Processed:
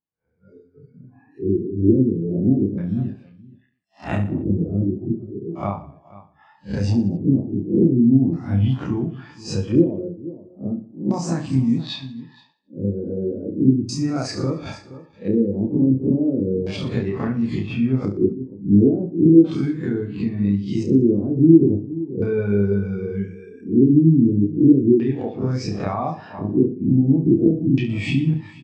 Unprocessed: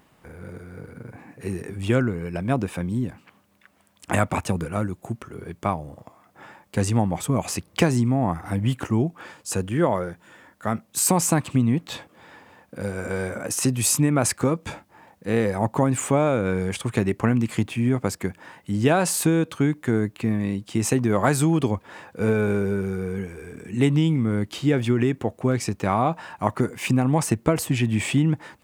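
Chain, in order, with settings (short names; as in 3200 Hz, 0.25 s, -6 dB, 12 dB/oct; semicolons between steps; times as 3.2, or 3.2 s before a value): spectral swells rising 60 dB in 0.41 s; spectral noise reduction 16 dB; echo 0.473 s -16 dB; compressor 6:1, threshold -21 dBFS, peak gain reduction 9.5 dB; LFO low-pass square 0.36 Hz 340–4900 Hz; on a send: reverse bouncing-ball echo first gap 30 ms, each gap 1.3×, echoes 5; on the sum: spectral expander 1.5:1; gain +4 dB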